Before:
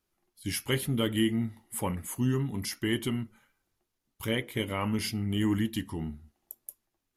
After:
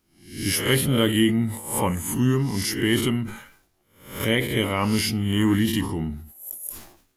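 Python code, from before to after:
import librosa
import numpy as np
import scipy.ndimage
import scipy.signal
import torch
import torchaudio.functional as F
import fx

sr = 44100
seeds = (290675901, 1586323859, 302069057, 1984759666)

y = fx.spec_swells(x, sr, rise_s=0.52)
y = fx.sustainer(y, sr, db_per_s=90.0)
y = y * 10.0 ** (6.5 / 20.0)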